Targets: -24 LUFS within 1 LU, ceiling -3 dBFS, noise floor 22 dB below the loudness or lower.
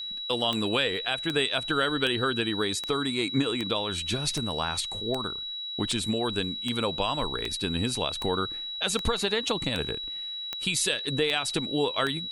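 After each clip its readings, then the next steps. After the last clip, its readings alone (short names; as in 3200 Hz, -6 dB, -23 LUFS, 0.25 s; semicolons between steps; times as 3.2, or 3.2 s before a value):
clicks 16; steady tone 3900 Hz; tone level -33 dBFS; loudness -27.5 LUFS; peak -12.5 dBFS; loudness target -24.0 LUFS
-> de-click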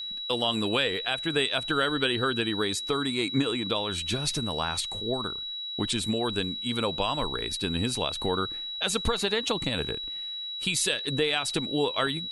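clicks 0; steady tone 3900 Hz; tone level -33 dBFS
-> notch 3900 Hz, Q 30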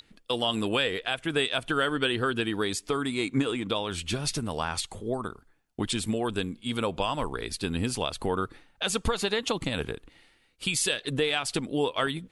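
steady tone none; loudness -29.0 LUFS; peak -13.0 dBFS; loudness target -24.0 LUFS
-> gain +5 dB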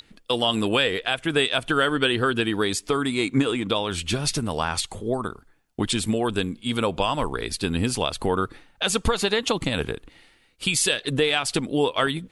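loudness -24.0 LUFS; peak -8.0 dBFS; noise floor -59 dBFS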